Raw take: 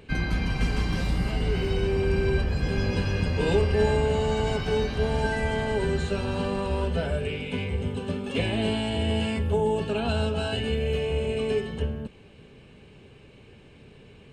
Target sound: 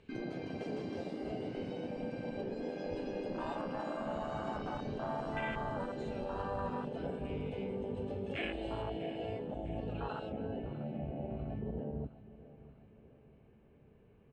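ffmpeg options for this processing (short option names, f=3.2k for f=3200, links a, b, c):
-af "asetnsamples=n=441:p=0,asendcmd='8.82 lowpass f 3800;10.32 lowpass f 1400',lowpass=7k,afftfilt=real='re*lt(hypot(re,im),0.178)':imag='im*lt(hypot(re,im),0.178)':win_size=1024:overlap=0.75,afwtdn=0.0316,acompressor=threshold=-50dB:ratio=1.5,aecho=1:1:649|1298|1947|2596:0.141|0.0664|0.0312|0.0147,volume=3.5dB"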